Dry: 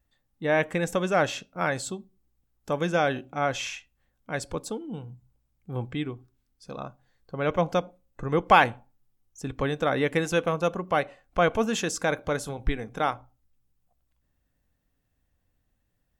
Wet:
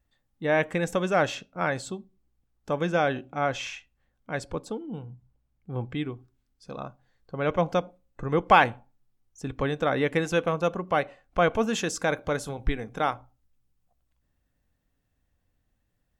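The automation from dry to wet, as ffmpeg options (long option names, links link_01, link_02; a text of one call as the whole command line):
ffmpeg -i in.wav -af "asetnsamples=nb_out_samples=441:pad=0,asendcmd='1.35 lowpass f 4200;4.45 lowpass f 2600;5.9 lowpass f 6000;11.64 lowpass f 10000',lowpass=frequency=8100:poles=1" out.wav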